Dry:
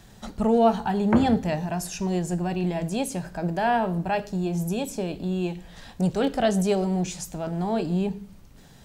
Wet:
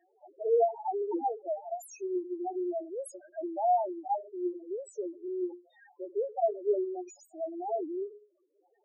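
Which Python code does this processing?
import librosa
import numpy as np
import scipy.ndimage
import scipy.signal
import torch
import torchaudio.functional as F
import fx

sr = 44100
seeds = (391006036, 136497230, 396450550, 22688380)

y = scipy.signal.sosfilt(scipy.signal.ellip(4, 1.0, 40, 330.0, 'highpass', fs=sr, output='sos'), x)
y = fx.spec_topn(y, sr, count=2)
y = fx.end_taper(y, sr, db_per_s=210.0)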